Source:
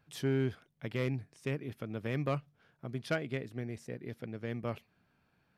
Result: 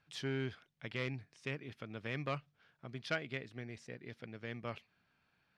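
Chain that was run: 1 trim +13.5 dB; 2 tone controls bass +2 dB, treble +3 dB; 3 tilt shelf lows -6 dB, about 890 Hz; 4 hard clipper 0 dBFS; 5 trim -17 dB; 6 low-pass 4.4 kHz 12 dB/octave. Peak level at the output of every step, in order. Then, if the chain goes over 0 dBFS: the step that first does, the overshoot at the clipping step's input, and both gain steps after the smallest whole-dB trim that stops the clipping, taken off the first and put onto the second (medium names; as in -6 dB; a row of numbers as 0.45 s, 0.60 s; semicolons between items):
-9.0 dBFS, -8.0 dBFS, -2.5 dBFS, -2.5 dBFS, -19.5 dBFS, -21.0 dBFS; nothing clips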